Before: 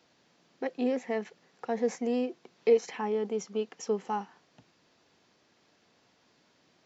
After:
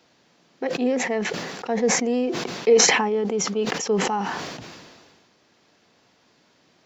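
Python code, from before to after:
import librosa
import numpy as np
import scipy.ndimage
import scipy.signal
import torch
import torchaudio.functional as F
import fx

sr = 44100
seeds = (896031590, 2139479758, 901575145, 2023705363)

y = fx.sustainer(x, sr, db_per_s=33.0)
y = F.gain(torch.from_numpy(y), 6.0).numpy()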